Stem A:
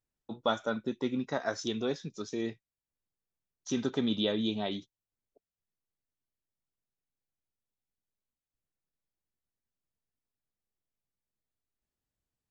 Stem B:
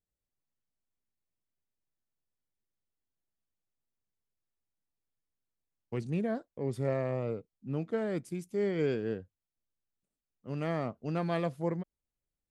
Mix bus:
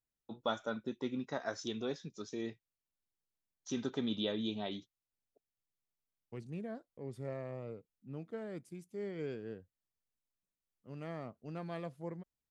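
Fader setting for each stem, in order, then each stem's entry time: -6.0, -10.5 dB; 0.00, 0.40 s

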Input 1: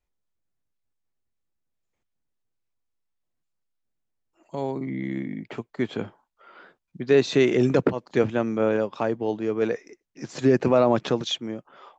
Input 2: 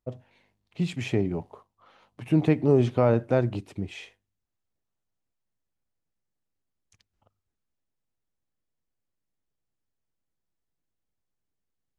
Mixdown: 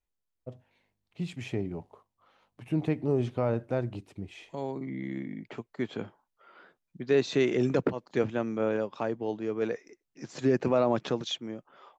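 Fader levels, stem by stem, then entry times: -6.0, -7.0 dB; 0.00, 0.40 s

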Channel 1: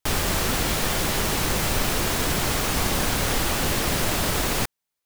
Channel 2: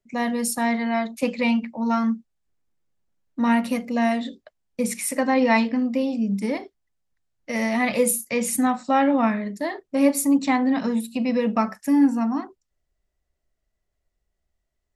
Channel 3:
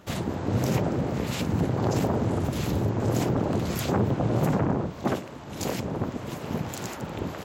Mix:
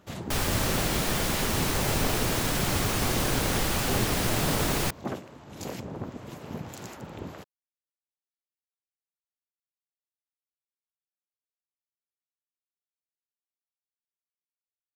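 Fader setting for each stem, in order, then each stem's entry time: -4.0 dB, off, -7.0 dB; 0.25 s, off, 0.00 s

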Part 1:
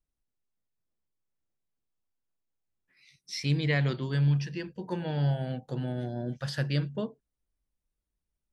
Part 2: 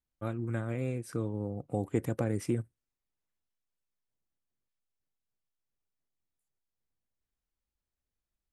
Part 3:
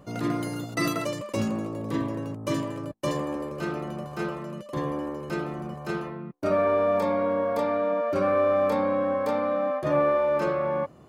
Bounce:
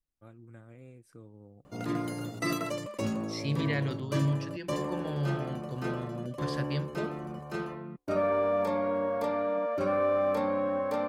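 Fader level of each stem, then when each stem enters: -4.5, -17.0, -4.5 dB; 0.00, 0.00, 1.65 s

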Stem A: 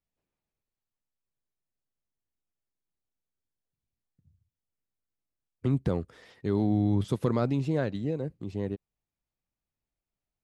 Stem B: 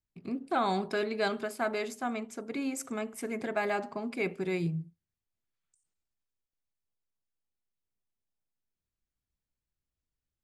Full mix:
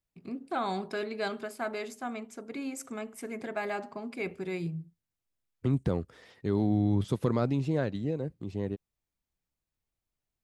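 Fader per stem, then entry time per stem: -1.0, -3.0 dB; 0.00, 0.00 s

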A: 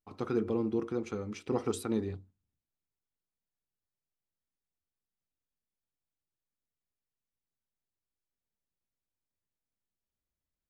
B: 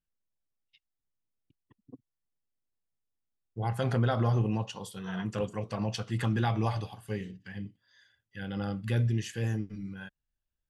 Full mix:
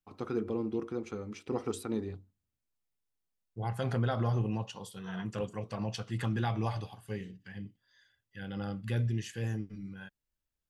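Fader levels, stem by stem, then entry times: -2.5, -3.5 dB; 0.00, 0.00 s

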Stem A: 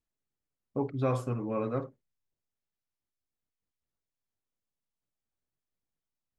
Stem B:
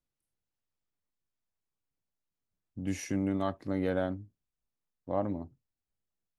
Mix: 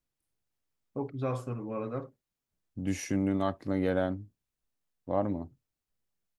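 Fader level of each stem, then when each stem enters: -3.5, +2.0 dB; 0.20, 0.00 s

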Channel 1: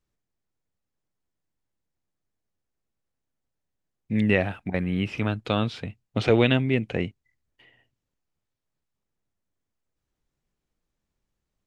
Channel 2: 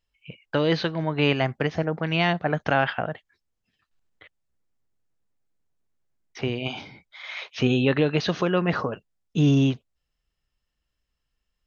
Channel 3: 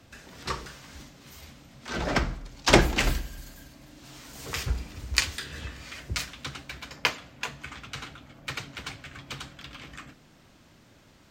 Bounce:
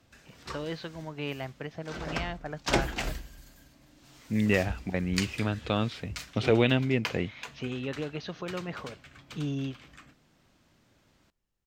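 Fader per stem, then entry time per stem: -3.5, -13.5, -8.5 dB; 0.20, 0.00, 0.00 s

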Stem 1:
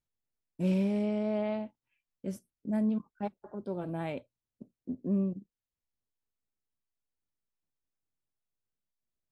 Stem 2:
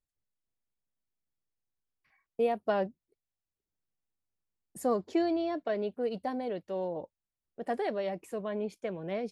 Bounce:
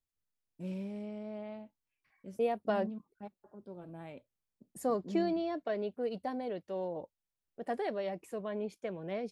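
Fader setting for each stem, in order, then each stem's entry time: -11.5, -3.0 dB; 0.00, 0.00 s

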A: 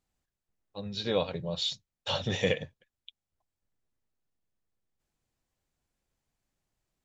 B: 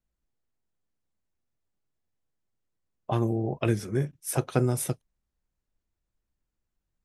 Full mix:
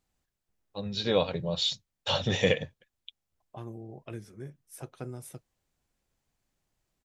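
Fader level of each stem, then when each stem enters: +3.0, -15.5 dB; 0.00, 0.45 s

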